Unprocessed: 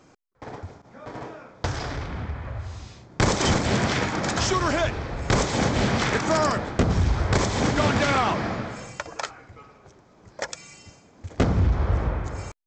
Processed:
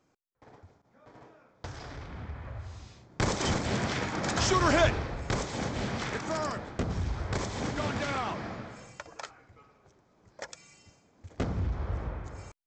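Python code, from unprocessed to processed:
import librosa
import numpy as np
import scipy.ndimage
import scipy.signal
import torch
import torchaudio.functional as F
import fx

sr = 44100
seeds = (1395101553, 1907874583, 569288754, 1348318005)

y = fx.gain(x, sr, db=fx.line((1.34, -16.5), (2.42, -7.5), (4.03, -7.5), (4.85, 1.0), (5.39, -10.5)))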